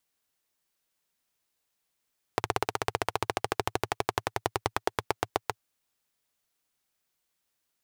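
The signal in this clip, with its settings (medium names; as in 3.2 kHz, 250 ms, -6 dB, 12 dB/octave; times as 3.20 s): single-cylinder engine model, changing speed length 3.25 s, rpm 2000, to 800, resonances 110/420/750 Hz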